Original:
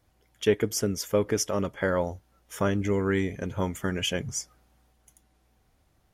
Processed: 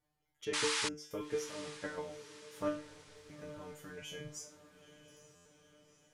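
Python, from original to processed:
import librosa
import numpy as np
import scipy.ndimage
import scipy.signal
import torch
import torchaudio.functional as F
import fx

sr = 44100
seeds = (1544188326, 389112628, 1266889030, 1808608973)

p1 = fx.cheby2_bandstop(x, sr, low_hz=140.0, high_hz=8700.0, order=4, stop_db=40, at=(2.77, 3.29))
p2 = fx.level_steps(p1, sr, step_db=12)
p3 = fx.comb_fb(p2, sr, f0_hz=150.0, decay_s=0.36, harmonics='all', damping=0.0, mix_pct=100)
p4 = fx.spec_paint(p3, sr, seeds[0], shape='noise', start_s=0.53, length_s=0.36, low_hz=830.0, high_hz=11000.0, level_db=-34.0)
p5 = fx.air_absorb(p4, sr, metres=75.0, at=(0.45, 1.11))
p6 = p5 + fx.echo_diffused(p5, sr, ms=909, feedback_pct=51, wet_db=-14.5, dry=0)
p7 = fx.buffer_glitch(p6, sr, at_s=(5.35,), block=512, repeats=8)
y = p7 * librosa.db_to_amplitude(3.0)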